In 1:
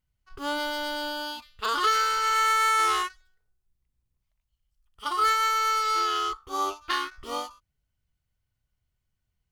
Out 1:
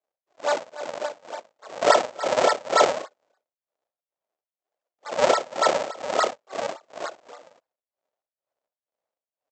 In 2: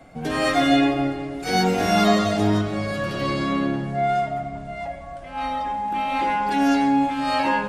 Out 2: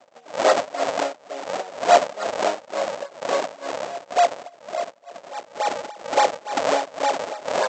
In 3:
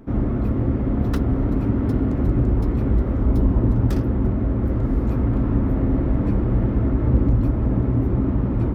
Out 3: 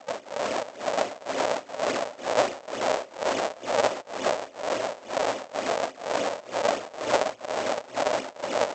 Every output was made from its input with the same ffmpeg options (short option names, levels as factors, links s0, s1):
-af "adynamicequalizer=threshold=0.0141:dfrequency=1600:dqfactor=1:tfrequency=1600:tqfactor=1:attack=5:release=100:ratio=0.375:range=3.5:mode=boostabove:tftype=bell,tremolo=f=2.1:d=0.93,aresample=16000,acrusher=samples=26:mix=1:aa=0.000001:lfo=1:lforange=41.6:lforate=3.5,aresample=44100,highpass=f=600:t=q:w=3.5"